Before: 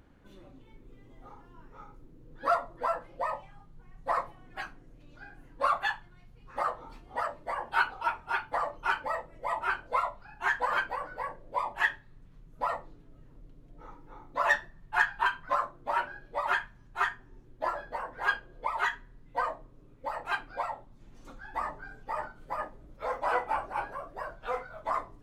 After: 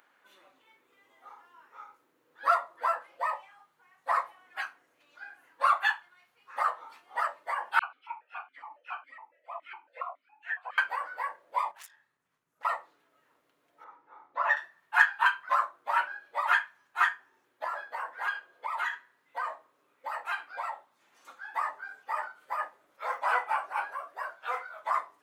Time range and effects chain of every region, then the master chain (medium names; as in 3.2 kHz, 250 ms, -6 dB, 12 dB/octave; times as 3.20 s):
7.79–10.78 s: phase dispersion lows, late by 52 ms, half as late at 1.4 kHz + stepped vowel filter 7.2 Hz
11.71–12.65 s: self-modulated delay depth 0.76 ms + FFT filter 130 Hz 0 dB, 400 Hz -8 dB, 3.9 kHz -11 dB, 6.2 kHz -5 dB + compression 8:1, threshold -49 dBFS
13.84–14.57 s: low-pass 1.1 kHz 6 dB/octave + careless resampling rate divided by 3×, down none, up filtered
17.64–21.35 s: high-pass 87 Hz + compression 5:1, threshold -31 dBFS
whole clip: high-pass 1.2 kHz 12 dB/octave; peaking EQ 5.1 kHz -6.5 dB 2.1 oct; trim +7.5 dB